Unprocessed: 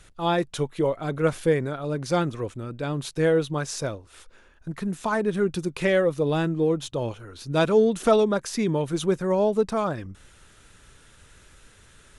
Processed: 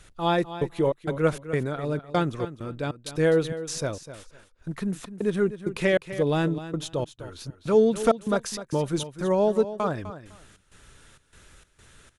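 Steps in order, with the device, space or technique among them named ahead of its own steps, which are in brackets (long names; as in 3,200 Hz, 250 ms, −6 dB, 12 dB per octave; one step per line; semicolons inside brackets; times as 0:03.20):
trance gate with a delay (gate pattern "xxx.xx.xx." 98 BPM −60 dB; repeating echo 253 ms, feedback 19%, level −13 dB)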